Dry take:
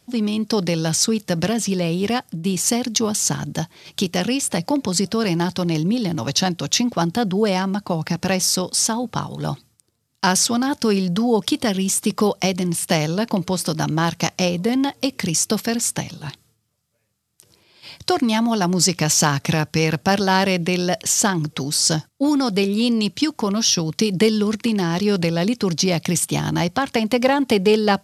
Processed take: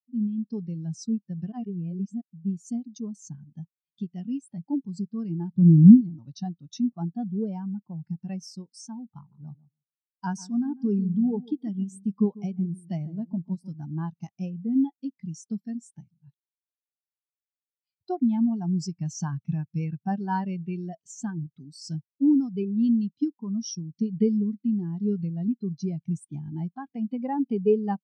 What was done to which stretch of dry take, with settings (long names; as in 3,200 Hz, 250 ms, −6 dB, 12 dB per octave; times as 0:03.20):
0:01.52–0:02.21: reverse
0:05.53–0:06.01: spectral tilt −2.5 dB per octave
0:09.17–0:13.72: feedback echo with a low-pass in the loop 146 ms, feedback 29%, level −8 dB
whole clip: parametric band 510 Hz −7 dB 0.52 octaves; every bin expanded away from the loudest bin 2.5 to 1